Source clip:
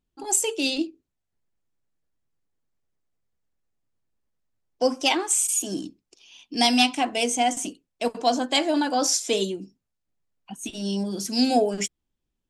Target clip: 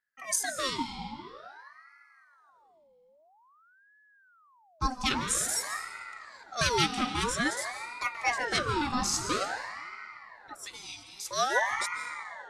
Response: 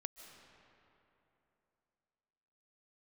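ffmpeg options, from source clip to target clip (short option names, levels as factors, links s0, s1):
-filter_complex "[0:a]asettb=1/sr,asplit=3[s0][s1][s2];[s0]atrim=end=10.634[s3];[s1]atrim=start=10.63:end=11.31,asetpts=PTS-STARTPTS,afade=t=in:d=0.004:c=qsin,afade=t=out:st=0.676:d=0.004:c=qsin,highpass=f=1900:t=q:w=1.6[s4];[s2]atrim=start=11.306[s5];[s3][s4]acrossfade=d=0.004:c1=hsin:c2=qsin[s6];[s6][s5]acrossfade=d=0.004:c1=qsin:c2=hsin[s7];[1:a]atrim=start_sample=2205[s8];[s7][s8]afir=irnorm=-1:irlink=0,aeval=exprs='val(0)*sin(2*PI*1100*n/s+1100*0.55/0.5*sin(2*PI*0.5*n/s))':c=same"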